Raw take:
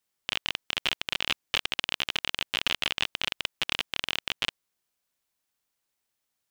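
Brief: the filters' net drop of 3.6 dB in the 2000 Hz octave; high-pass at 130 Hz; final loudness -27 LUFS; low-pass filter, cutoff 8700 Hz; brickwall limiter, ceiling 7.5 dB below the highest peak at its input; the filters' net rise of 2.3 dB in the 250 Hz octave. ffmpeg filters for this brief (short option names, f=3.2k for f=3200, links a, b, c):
-af "highpass=130,lowpass=8.7k,equalizer=f=250:t=o:g=3.5,equalizer=f=2k:t=o:g=-5,volume=11.5dB,alimiter=limit=-6dB:level=0:latency=1"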